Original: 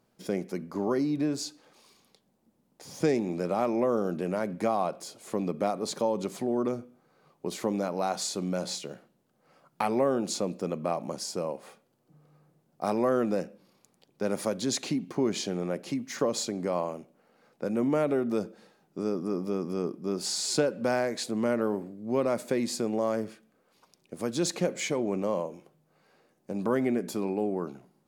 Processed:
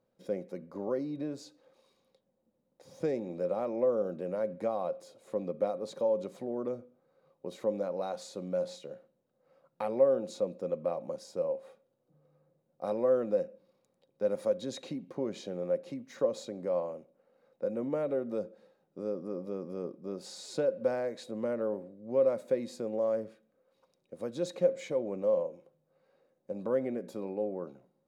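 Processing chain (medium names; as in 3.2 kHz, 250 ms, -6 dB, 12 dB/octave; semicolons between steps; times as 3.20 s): treble shelf 2.9 kHz -9 dB; small resonant body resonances 530/3800 Hz, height 16 dB, ringing for 75 ms; trim -9 dB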